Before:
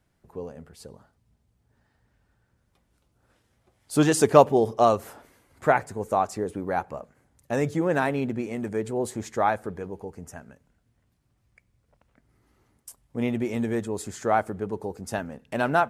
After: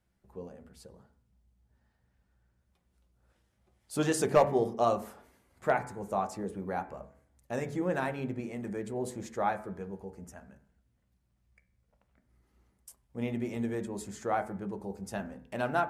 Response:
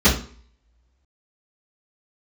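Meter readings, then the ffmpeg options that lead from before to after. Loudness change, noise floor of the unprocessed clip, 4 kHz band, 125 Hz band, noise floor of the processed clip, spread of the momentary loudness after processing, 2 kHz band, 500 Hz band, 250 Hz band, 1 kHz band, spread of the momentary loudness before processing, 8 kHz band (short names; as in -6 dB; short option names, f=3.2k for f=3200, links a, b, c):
-7.5 dB, -70 dBFS, -7.5 dB, -7.5 dB, -75 dBFS, 18 LU, -7.5 dB, -7.5 dB, -7.5 dB, -7.5 dB, 18 LU, -7.5 dB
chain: -filter_complex "[0:a]asoftclip=type=hard:threshold=-6.5dB,bandreject=f=71.74:t=h:w=4,bandreject=f=143.48:t=h:w=4,bandreject=f=215.22:t=h:w=4,bandreject=f=286.96:t=h:w=4,bandreject=f=358.7:t=h:w=4,bandreject=f=430.44:t=h:w=4,bandreject=f=502.18:t=h:w=4,bandreject=f=573.92:t=h:w=4,bandreject=f=645.66:t=h:w=4,bandreject=f=717.4:t=h:w=4,bandreject=f=789.14:t=h:w=4,bandreject=f=860.88:t=h:w=4,bandreject=f=932.62:t=h:w=4,bandreject=f=1.00436k:t=h:w=4,bandreject=f=1.0761k:t=h:w=4,bandreject=f=1.14784k:t=h:w=4,bandreject=f=1.21958k:t=h:w=4,bandreject=f=1.29132k:t=h:w=4,bandreject=f=1.36306k:t=h:w=4,bandreject=f=1.4348k:t=h:w=4,bandreject=f=1.50654k:t=h:w=4,bandreject=f=1.57828k:t=h:w=4,bandreject=f=1.65002k:t=h:w=4,bandreject=f=1.72176k:t=h:w=4,bandreject=f=1.7935k:t=h:w=4,bandreject=f=1.86524k:t=h:w=4,bandreject=f=1.93698k:t=h:w=4,bandreject=f=2.00872k:t=h:w=4,bandreject=f=2.08046k:t=h:w=4,bandreject=f=2.1522k:t=h:w=4,bandreject=f=2.22394k:t=h:w=4,bandreject=f=2.29568k:t=h:w=4,bandreject=f=2.36742k:t=h:w=4,asplit=2[a][b];[1:a]atrim=start_sample=2205,lowpass=2.6k[c];[b][c]afir=irnorm=-1:irlink=0,volume=-31dB[d];[a][d]amix=inputs=2:normalize=0,volume=-7.5dB"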